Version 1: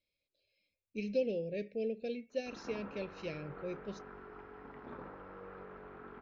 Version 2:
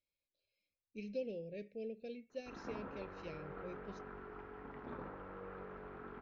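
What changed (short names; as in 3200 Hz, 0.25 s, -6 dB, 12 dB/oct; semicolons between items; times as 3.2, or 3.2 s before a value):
speech -8.5 dB; master: add low shelf 150 Hz +3.5 dB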